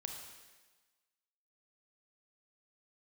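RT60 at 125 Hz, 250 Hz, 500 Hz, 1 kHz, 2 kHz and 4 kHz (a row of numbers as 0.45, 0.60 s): 1.1, 1.2, 1.3, 1.3, 1.3, 1.3 s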